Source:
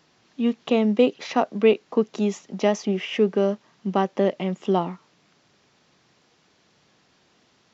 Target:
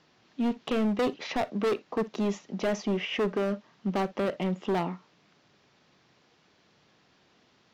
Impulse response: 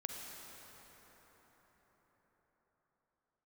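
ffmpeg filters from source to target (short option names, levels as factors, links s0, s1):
-filter_complex "[0:a]lowpass=5300,asoftclip=type=hard:threshold=0.0841,asplit=2[s0][s1];[1:a]atrim=start_sample=2205,atrim=end_sample=3087,asetrate=48510,aresample=44100[s2];[s1][s2]afir=irnorm=-1:irlink=0,volume=1.19[s3];[s0][s3]amix=inputs=2:normalize=0,volume=0.473"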